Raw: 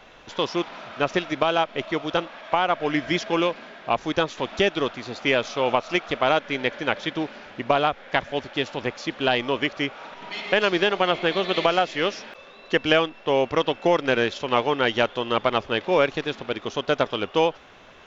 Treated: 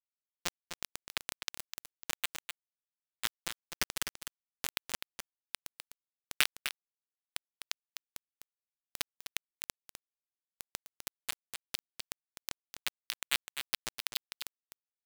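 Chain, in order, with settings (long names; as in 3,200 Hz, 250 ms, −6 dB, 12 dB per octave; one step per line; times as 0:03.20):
gate on every frequency bin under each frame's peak −25 dB weak
high-pass filter 1,300 Hz 24 dB per octave
in parallel at −3 dB: speech leveller within 3 dB 2 s
on the sum: transient designer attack +10 dB, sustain −6 dB
downward compressor 1.5 to 1, threshold −41 dBFS, peak gain reduction 8 dB
rotating-speaker cabinet horn 1 Hz, later 6.3 Hz, at 0:07.48
bit reduction 4 bits
shaped tremolo triangle 2.5 Hz, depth 35%
tempo change 1.2×
single-tap delay 253 ms −8.5 dB
level +5.5 dB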